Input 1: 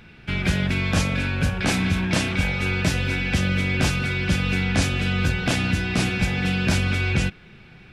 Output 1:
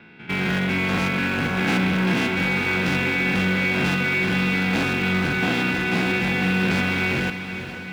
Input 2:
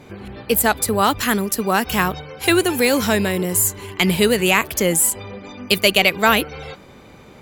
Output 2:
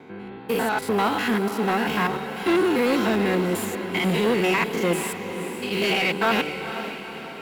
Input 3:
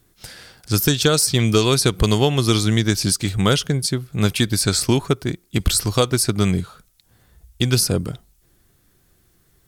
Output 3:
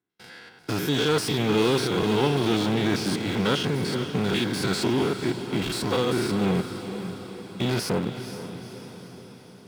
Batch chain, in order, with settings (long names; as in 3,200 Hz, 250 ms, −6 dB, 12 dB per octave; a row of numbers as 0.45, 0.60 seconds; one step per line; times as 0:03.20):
spectrum averaged block by block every 100 ms
in parallel at −5 dB: bit reduction 4 bits
on the sum: notch comb filter 600 Hz
noise gate with hold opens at −42 dBFS
soft clipping −18 dBFS
three-way crossover with the lows and the highs turned down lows −18 dB, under 160 Hz, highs −15 dB, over 3,700 Hz
on a send: feedback delay with all-pass diffusion 481 ms, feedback 57%, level −10 dB
on the sum: normalise the peak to −9 dBFS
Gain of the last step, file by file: +4.5, +1.5, +2.0 decibels